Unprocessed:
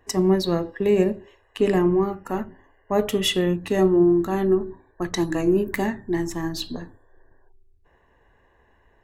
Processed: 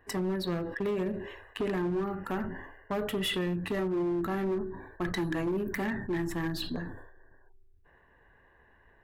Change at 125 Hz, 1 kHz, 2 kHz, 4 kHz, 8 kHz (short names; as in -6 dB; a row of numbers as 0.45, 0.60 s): -8.0, -8.0, -4.0, -8.5, -12.0 dB